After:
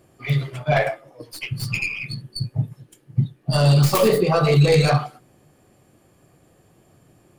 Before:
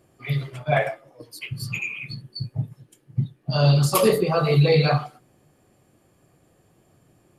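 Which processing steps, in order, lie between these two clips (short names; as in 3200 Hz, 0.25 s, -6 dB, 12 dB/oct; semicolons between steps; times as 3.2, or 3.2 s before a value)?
tracing distortion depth 0.28 ms; limiter -12 dBFS, peak gain reduction 5 dB; gain +4 dB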